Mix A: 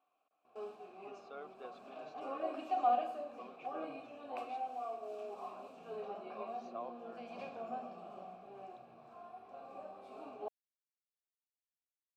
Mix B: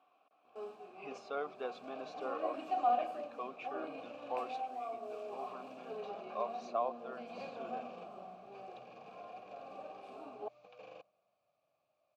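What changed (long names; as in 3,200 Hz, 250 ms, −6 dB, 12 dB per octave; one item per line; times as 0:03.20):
speech +10.0 dB
second sound: unmuted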